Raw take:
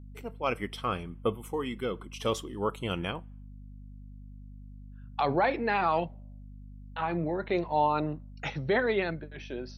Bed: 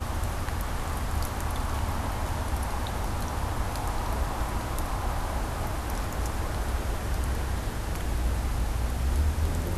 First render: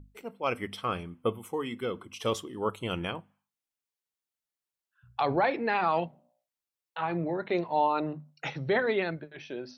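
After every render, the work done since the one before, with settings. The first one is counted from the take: notches 50/100/150/200/250 Hz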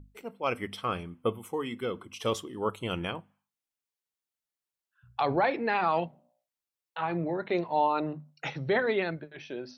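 nothing audible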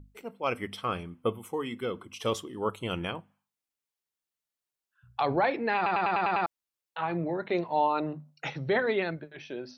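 5.76 stutter in place 0.10 s, 7 plays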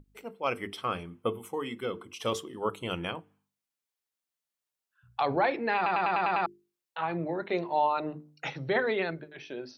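low shelf 150 Hz -4 dB; notches 50/100/150/200/250/300/350/400/450 Hz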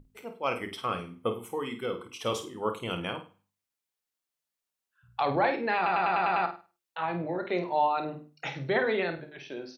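doubler 28 ms -13 dB; flutter echo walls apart 8.7 m, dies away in 0.33 s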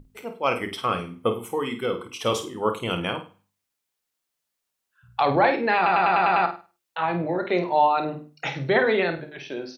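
gain +6.5 dB

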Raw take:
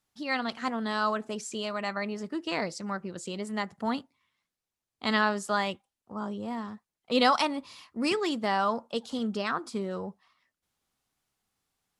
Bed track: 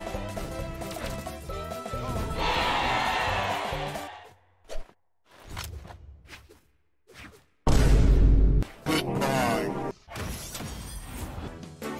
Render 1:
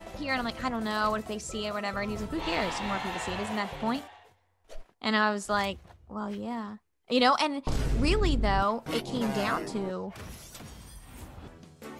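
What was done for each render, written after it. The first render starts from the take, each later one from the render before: add bed track -8.5 dB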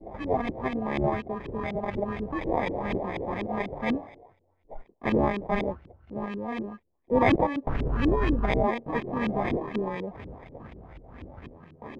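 sample-and-hold 31×; LFO low-pass saw up 4.1 Hz 290–3000 Hz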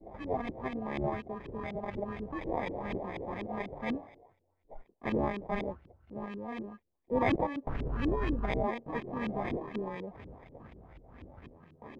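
gain -7 dB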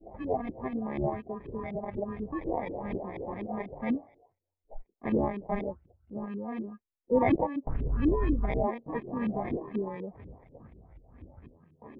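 in parallel at +2 dB: compressor, threshold -40 dBFS, peak gain reduction 16 dB; on the sum: spectral expander 1.5:1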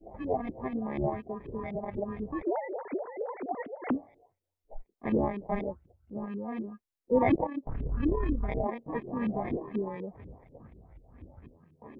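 2.42–3.91 sine-wave speech; 7.35–8.73 AM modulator 35 Hz, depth 35%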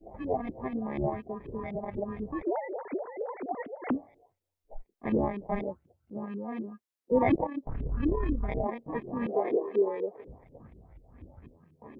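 5.62–7.12 HPF 120 Hz; 9.26–10.28 resonant high-pass 430 Hz, resonance Q 3.9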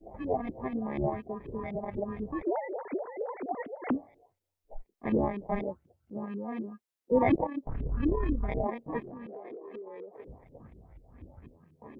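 9.01–10.19 compressor 10:1, threshold -40 dBFS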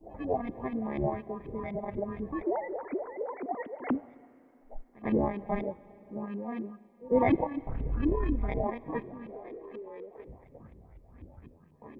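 reverse echo 0.102 s -22.5 dB; Schroeder reverb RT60 3.4 s, combs from 33 ms, DRR 19.5 dB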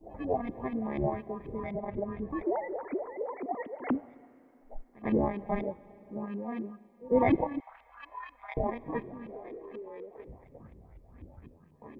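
1.73–2.3 air absorption 120 m; 3–3.72 notch 1500 Hz, Q 5.6; 7.6–8.57 inverse Chebyshev high-pass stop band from 410 Hz

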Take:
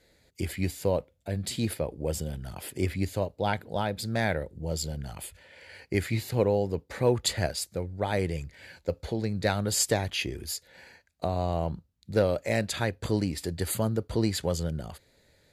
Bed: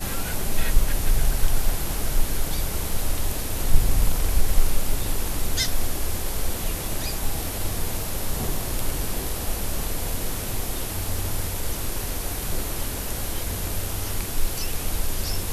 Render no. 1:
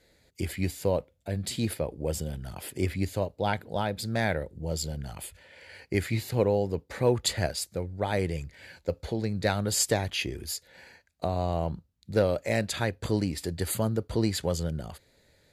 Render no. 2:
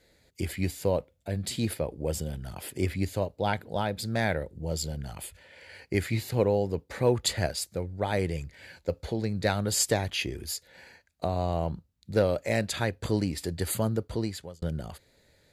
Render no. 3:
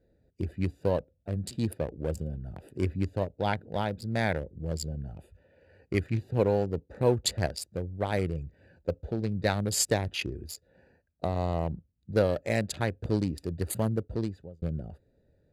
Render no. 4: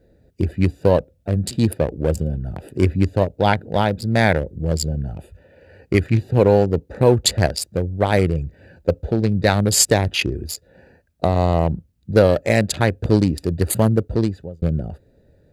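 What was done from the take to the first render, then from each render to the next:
nothing audible
13.96–14.62 fade out
Wiener smoothing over 41 samples
gain +12 dB; limiter -2 dBFS, peak gain reduction 2.5 dB

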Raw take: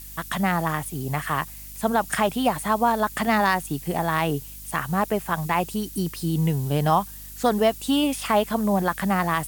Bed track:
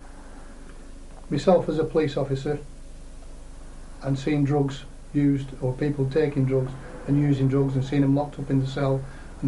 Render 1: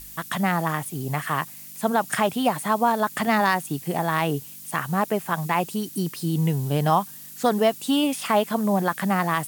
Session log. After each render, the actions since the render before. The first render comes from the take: de-hum 50 Hz, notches 2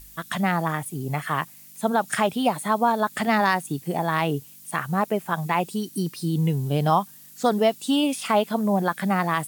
noise print and reduce 6 dB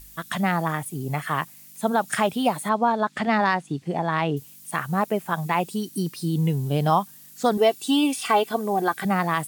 2.69–4.37 air absorption 100 m; 7.57–9.05 comb 2.6 ms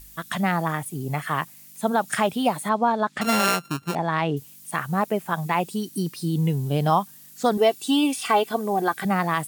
3.21–3.95 sample sorter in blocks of 32 samples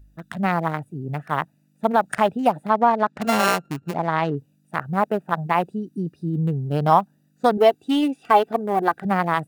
Wiener smoothing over 41 samples; dynamic EQ 850 Hz, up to +6 dB, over -34 dBFS, Q 0.71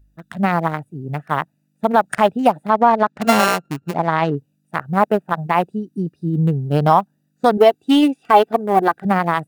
maximiser +8.5 dB; upward expander 1.5:1, over -32 dBFS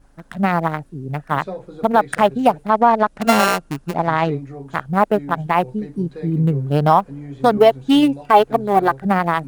add bed track -12 dB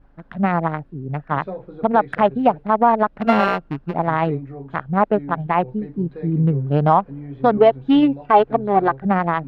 air absorption 370 m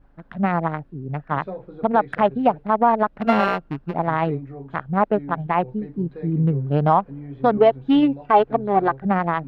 gain -2 dB

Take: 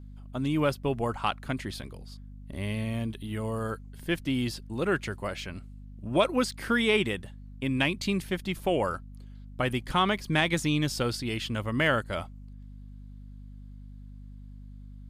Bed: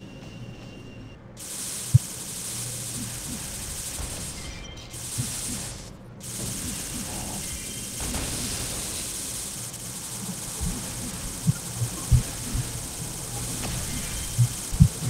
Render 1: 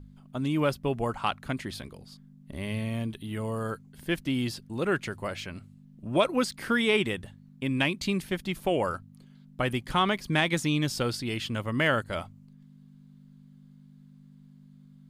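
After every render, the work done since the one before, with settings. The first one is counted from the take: de-hum 50 Hz, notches 2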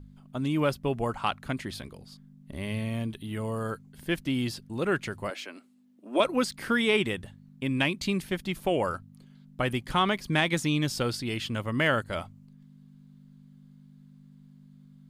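5.3–6.2 Chebyshev high-pass 260 Hz, order 4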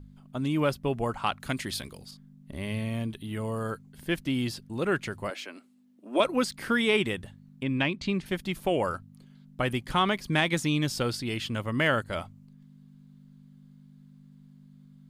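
1.4–2.11 high shelf 2700 Hz +9.5 dB; 7.63–8.26 air absorption 110 m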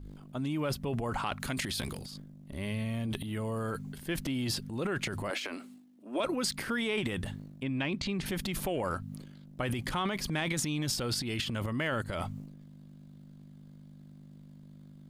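transient shaper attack -3 dB, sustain +12 dB; compressor 3:1, threshold -31 dBFS, peak gain reduction 10.5 dB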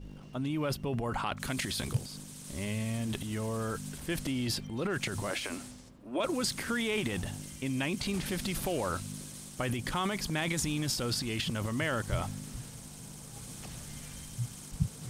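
add bed -14.5 dB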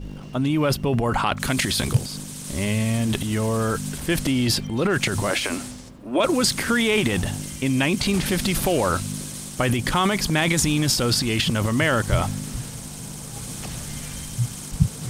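gain +11.5 dB

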